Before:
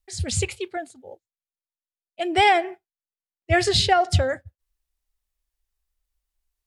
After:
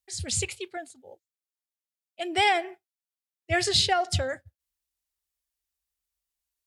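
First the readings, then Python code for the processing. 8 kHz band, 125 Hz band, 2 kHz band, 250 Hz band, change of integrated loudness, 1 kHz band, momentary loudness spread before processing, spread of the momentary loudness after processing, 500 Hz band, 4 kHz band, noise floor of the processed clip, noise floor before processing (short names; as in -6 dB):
0.0 dB, -8.5 dB, -4.0 dB, -7.0 dB, -4.5 dB, -6.5 dB, 16 LU, 17 LU, -6.5 dB, -1.5 dB, under -85 dBFS, under -85 dBFS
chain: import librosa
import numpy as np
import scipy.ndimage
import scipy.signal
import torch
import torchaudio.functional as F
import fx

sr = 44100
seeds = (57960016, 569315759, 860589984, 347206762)

y = scipy.signal.sosfilt(scipy.signal.butter(2, 72.0, 'highpass', fs=sr, output='sos'), x)
y = fx.high_shelf(y, sr, hz=2400.0, db=7.5)
y = y * 10.0 ** (-7.0 / 20.0)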